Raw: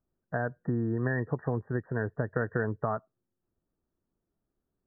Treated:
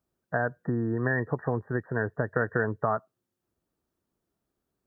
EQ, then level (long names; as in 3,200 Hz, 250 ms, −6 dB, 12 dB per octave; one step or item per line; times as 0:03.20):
high-pass filter 42 Hz
low-shelf EQ 460 Hz −6 dB
+6.0 dB